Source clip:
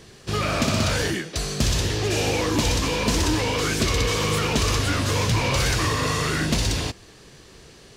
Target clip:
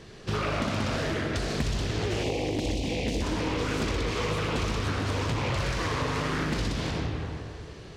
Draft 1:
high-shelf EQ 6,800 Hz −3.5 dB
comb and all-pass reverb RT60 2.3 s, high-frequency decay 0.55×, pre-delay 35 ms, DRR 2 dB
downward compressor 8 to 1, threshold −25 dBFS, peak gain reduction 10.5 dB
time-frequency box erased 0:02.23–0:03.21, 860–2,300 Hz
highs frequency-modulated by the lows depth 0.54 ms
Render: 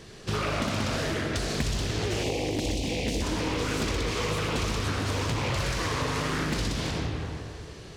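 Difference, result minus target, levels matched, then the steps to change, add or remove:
8,000 Hz band +4.0 dB
change: high-shelf EQ 6,800 Hz −14 dB

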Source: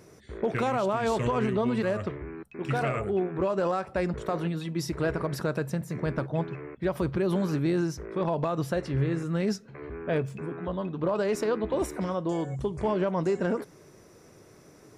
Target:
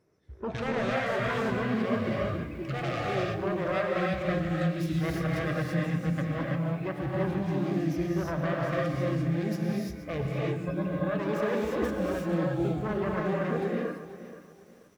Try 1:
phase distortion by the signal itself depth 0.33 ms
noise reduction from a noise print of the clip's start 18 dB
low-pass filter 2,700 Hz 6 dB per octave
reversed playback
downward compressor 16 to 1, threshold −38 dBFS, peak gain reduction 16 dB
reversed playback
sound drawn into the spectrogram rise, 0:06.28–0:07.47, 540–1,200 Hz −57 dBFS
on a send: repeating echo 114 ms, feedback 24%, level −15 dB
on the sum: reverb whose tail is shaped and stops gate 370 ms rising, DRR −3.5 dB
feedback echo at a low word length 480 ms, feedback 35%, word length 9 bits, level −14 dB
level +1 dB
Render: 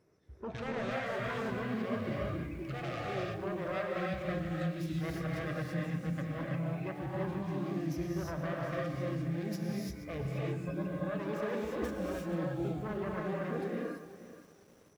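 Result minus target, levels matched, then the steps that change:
downward compressor: peak gain reduction +7 dB
change: downward compressor 16 to 1, threshold −30.5 dBFS, peak gain reduction 9 dB

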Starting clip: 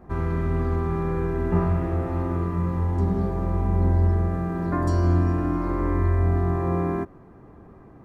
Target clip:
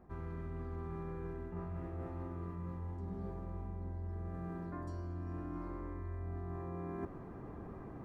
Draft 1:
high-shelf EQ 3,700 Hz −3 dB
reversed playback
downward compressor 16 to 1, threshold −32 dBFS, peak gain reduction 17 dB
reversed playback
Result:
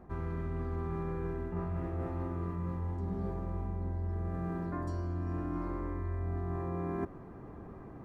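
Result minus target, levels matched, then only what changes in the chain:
downward compressor: peak gain reduction −6.5 dB
change: downward compressor 16 to 1, threshold −39 dBFS, peak gain reduction 23.5 dB

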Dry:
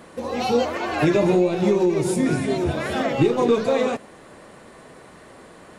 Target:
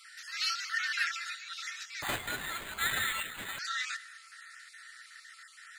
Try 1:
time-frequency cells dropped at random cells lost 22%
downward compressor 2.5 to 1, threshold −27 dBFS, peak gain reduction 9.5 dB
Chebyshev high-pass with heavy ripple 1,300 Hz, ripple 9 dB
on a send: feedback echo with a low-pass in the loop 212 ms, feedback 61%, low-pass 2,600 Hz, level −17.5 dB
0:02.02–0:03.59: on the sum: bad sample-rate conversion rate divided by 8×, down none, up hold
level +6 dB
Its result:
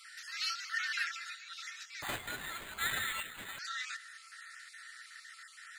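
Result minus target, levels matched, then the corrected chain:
downward compressor: peak gain reduction +5 dB
time-frequency cells dropped at random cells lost 22%
downward compressor 2.5 to 1, threshold −18.5 dBFS, peak gain reduction 4.5 dB
Chebyshev high-pass with heavy ripple 1,300 Hz, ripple 9 dB
on a send: feedback echo with a low-pass in the loop 212 ms, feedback 61%, low-pass 2,600 Hz, level −17.5 dB
0:02.02–0:03.59: on the sum: bad sample-rate conversion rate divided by 8×, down none, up hold
level +6 dB

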